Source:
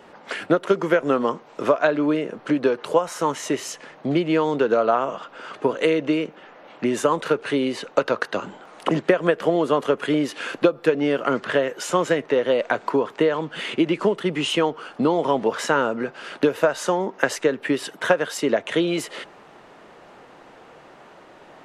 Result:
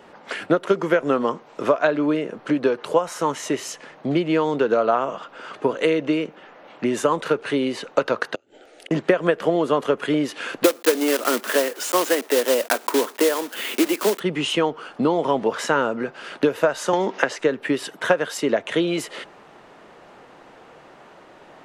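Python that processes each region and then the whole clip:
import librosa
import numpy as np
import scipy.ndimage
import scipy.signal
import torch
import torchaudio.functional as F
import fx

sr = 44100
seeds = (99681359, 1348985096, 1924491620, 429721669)

y = fx.chain(x, sr, fx.gate_flip(shuts_db=-21.0, range_db=-28),
    fx.fixed_phaser(hz=430.0, stages=4), at=(8.35, 8.91))
y = fx.chain(y, sr, fx.block_float(bits=3),
    fx.steep_highpass(hz=220.0, slope=48),
    fx.high_shelf(hz=7900.0, db=6.5), at=(10.64, 14.21))
y = fx.chain(y, sr, fx.highpass(hz=160.0, slope=12),
    fx.air_absorb(metres=74.0),
    fx.band_squash(depth_pct=100), at=(16.93, 17.39))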